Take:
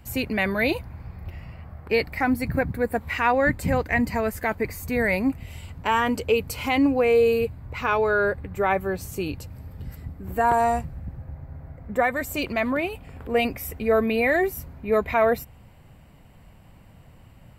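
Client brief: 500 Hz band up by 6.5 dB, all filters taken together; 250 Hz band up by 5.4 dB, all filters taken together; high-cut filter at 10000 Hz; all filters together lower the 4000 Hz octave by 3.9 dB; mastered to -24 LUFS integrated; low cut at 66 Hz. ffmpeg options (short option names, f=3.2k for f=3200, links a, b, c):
-af "highpass=66,lowpass=10k,equalizer=f=250:t=o:g=4.5,equalizer=f=500:t=o:g=6.5,equalizer=f=4k:t=o:g=-6,volume=-5dB"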